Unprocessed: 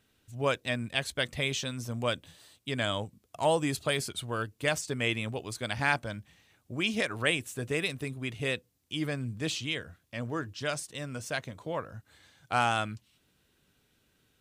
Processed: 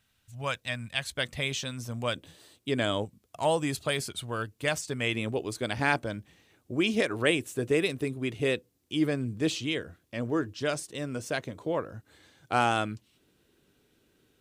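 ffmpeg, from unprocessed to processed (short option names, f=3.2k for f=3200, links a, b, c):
-af "asetnsamples=n=441:p=0,asendcmd='1.11 equalizer g -2;2.16 equalizer g 9;3.05 equalizer g 0;5.14 equalizer g 9',equalizer=f=360:t=o:w=1.2:g=-13"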